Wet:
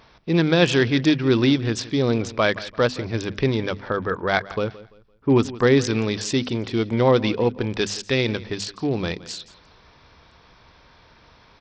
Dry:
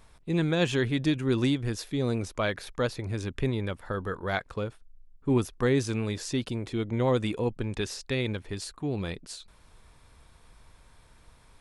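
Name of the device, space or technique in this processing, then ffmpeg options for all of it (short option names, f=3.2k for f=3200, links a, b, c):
Bluetooth headset: -af "highpass=f=130:p=1,bandreject=f=50:t=h:w=6,bandreject=f=100:t=h:w=6,bandreject=f=150:t=h:w=6,bandreject=f=200:t=h:w=6,bandreject=f=250:t=h:w=6,aecho=1:1:170|340|510:0.119|0.0368|0.0114,aresample=16000,aresample=44100,volume=9dB" -ar 44100 -c:a sbc -b:a 64k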